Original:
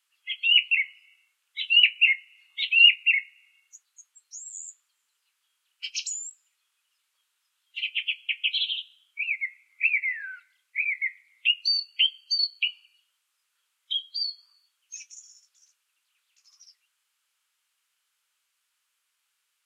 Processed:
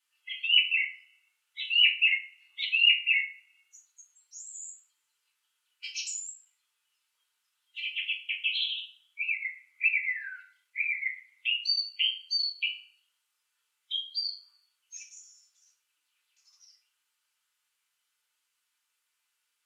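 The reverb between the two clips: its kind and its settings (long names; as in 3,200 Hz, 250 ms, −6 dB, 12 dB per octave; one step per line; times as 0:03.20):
feedback delay network reverb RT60 0.42 s, low-frequency decay 1.1×, high-frequency decay 0.85×, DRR −3 dB
level −7.5 dB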